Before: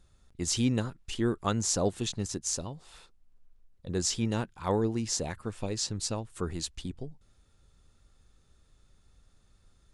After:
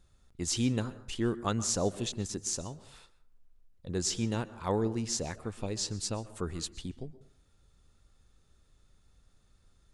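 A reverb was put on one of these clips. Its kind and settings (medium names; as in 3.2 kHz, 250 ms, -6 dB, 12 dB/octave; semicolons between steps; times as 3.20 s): plate-style reverb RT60 0.55 s, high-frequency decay 0.5×, pre-delay 110 ms, DRR 16 dB; trim -2 dB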